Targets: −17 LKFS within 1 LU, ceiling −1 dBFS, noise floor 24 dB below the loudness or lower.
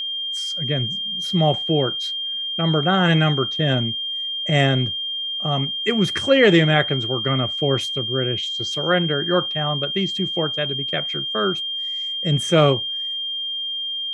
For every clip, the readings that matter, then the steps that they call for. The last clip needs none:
interfering tone 3,200 Hz; level of the tone −24 dBFS; integrated loudness −20.5 LKFS; sample peak −2.5 dBFS; target loudness −17.0 LKFS
→ notch filter 3,200 Hz, Q 30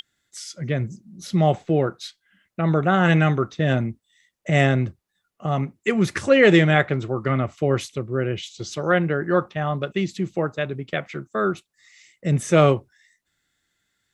interfering tone none found; integrated loudness −22.0 LKFS; sample peak −2.5 dBFS; target loudness −17.0 LKFS
→ level +5 dB
brickwall limiter −1 dBFS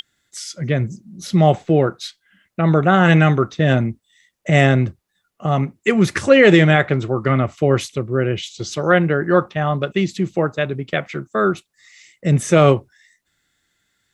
integrated loudness −17.5 LKFS; sample peak −1.0 dBFS; background noise floor −73 dBFS

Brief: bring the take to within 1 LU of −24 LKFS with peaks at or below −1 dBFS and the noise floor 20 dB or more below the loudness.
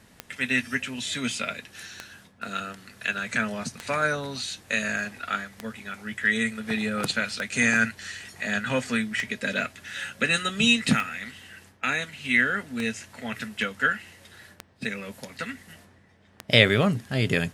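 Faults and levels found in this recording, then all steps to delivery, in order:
number of clicks 10; integrated loudness −26.0 LKFS; sample peak −1.5 dBFS; target loudness −24.0 LKFS
→ click removal
level +2 dB
brickwall limiter −1 dBFS

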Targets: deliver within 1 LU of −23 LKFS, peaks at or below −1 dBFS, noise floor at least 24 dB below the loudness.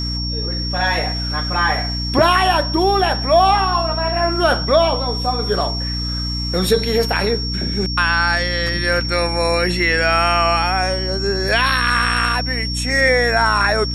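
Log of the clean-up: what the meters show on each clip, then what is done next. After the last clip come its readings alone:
mains hum 60 Hz; hum harmonics up to 300 Hz; level of the hum −22 dBFS; interfering tone 5,500 Hz; level of the tone −24 dBFS; integrated loudness −17.0 LKFS; sample peak −2.0 dBFS; target loudness −23.0 LKFS
→ mains-hum notches 60/120/180/240/300 Hz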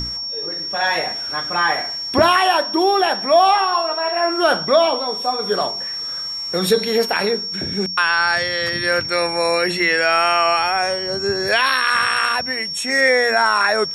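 mains hum none found; interfering tone 5,500 Hz; level of the tone −24 dBFS
→ notch filter 5,500 Hz, Q 30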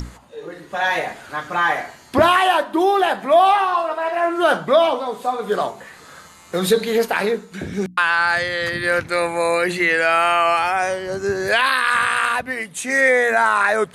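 interfering tone none found; integrated loudness −18.5 LKFS; sample peak −3.5 dBFS; target loudness −23.0 LKFS
→ level −4.5 dB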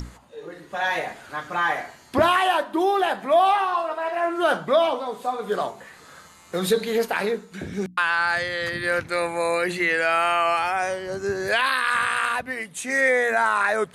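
integrated loudness −23.0 LKFS; sample peak −8.0 dBFS; background noise floor −49 dBFS

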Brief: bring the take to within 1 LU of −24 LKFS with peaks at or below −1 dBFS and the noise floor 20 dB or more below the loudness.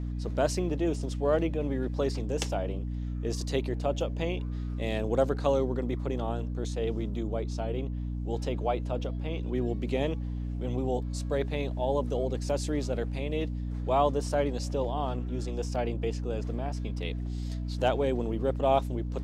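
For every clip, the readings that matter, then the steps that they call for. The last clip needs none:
mains hum 60 Hz; hum harmonics up to 300 Hz; level of the hum −31 dBFS; integrated loudness −31.0 LKFS; sample peak −12.5 dBFS; target loudness −24.0 LKFS
→ hum removal 60 Hz, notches 5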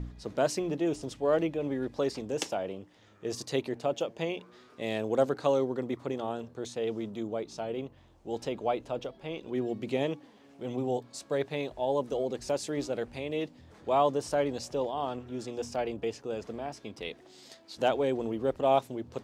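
mains hum none found; integrated loudness −32.5 LKFS; sample peak −13.5 dBFS; target loudness −24.0 LKFS
→ level +8.5 dB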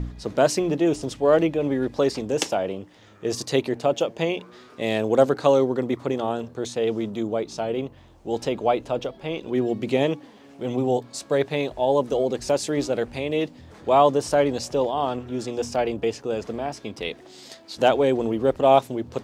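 integrated loudness −24.0 LKFS; sample peak −5.0 dBFS; background noise floor −49 dBFS

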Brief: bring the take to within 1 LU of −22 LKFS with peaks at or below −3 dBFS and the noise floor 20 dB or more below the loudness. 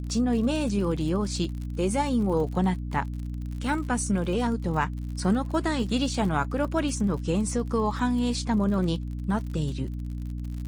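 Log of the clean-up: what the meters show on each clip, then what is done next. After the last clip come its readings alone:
crackle rate 56 per second; mains hum 60 Hz; hum harmonics up to 300 Hz; level of the hum −30 dBFS; integrated loudness −27.0 LKFS; sample peak −12.0 dBFS; target loudness −22.0 LKFS
→ click removal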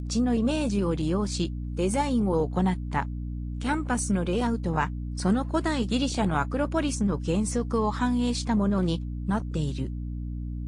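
crackle rate 0.19 per second; mains hum 60 Hz; hum harmonics up to 300 Hz; level of the hum −30 dBFS
→ mains-hum notches 60/120/180/240/300 Hz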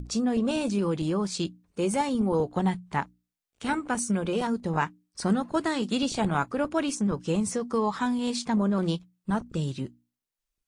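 mains hum none found; integrated loudness −28.0 LKFS; sample peak −12.5 dBFS; target loudness −22.0 LKFS
→ level +6 dB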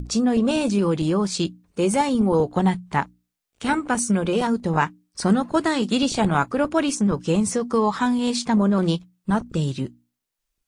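integrated loudness −22.0 LKFS; sample peak −6.5 dBFS; background noise floor −81 dBFS

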